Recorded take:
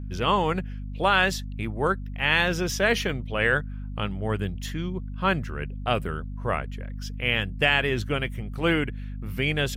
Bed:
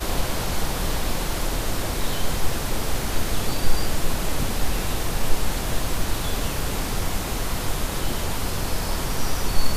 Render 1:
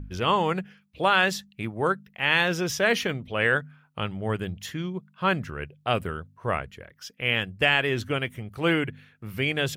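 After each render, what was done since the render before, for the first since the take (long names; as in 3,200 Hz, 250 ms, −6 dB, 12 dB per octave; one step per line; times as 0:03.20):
hum removal 50 Hz, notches 5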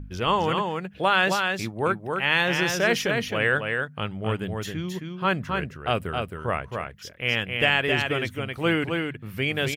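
single-tap delay 267 ms −4.5 dB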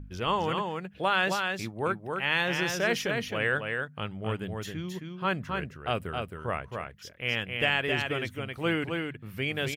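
level −5 dB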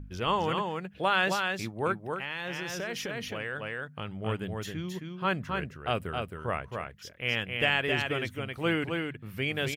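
0:02.14–0:04.15: downward compressor, threshold −31 dBFS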